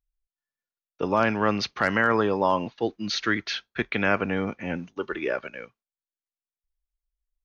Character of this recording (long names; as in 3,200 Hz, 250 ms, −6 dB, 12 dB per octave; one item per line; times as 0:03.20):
background noise floor −96 dBFS
spectral slope −3.0 dB per octave